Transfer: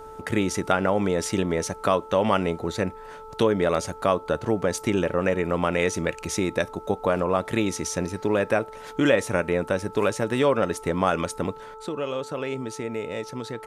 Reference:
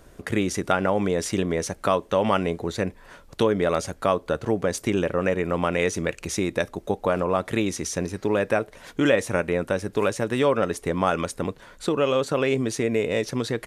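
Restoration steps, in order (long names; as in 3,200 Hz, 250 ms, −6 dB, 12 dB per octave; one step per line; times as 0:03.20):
hum removal 439 Hz, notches 3
level 0 dB, from 0:11.74 +7.5 dB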